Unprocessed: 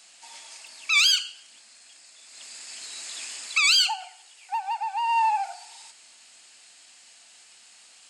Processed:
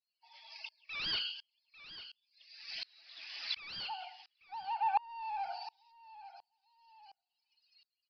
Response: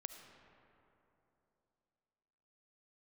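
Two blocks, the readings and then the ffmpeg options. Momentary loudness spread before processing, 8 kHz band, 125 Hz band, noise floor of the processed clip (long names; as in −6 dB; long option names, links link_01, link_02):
24 LU, below −35 dB, can't be measured, below −85 dBFS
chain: -af "afftdn=noise_reduction=33:noise_floor=-48,adynamicequalizer=threshold=0.002:dfrequency=140:dqfactor=1.2:tfrequency=140:tqfactor=1.2:attack=5:release=100:ratio=0.375:range=3:mode=cutabove:tftype=bell,aresample=11025,asoftclip=type=tanh:threshold=-25.5dB,aresample=44100,aecho=1:1:846|1692:0.1|0.026,aeval=exprs='val(0)*pow(10,-31*if(lt(mod(-1.4*n/s,1),2*abs(-1.4)/1000),1-mod(-1.4*n/s,1)/(2*abs(-1.4)/1000),(mod(-1.4*n/s,1)-2*abs(-1.4)/1000)/(1-2*abs(-1.4)/1000))/20)':channel_layout=same,volume=5.5dB"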